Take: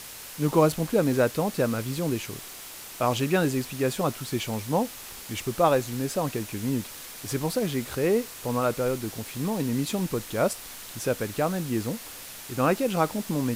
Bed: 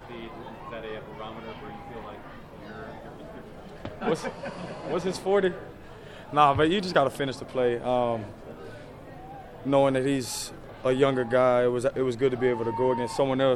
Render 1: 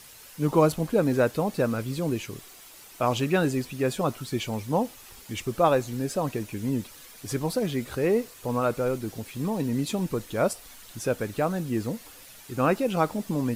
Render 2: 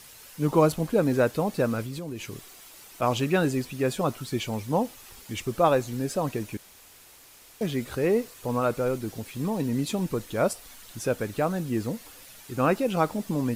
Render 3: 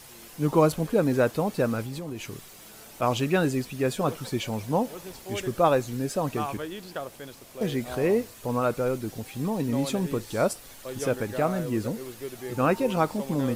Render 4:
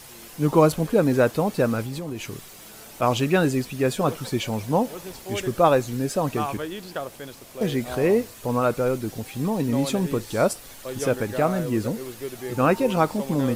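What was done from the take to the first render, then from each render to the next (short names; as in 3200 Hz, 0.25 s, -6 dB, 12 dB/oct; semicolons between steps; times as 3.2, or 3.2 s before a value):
denoiser 9 dB, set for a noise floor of -42 dBFS
1.82–3.02 compressor, threshold -31 dBFS; 6.57–7.61 room tone
add bed -13 dB
gain +3.5 dB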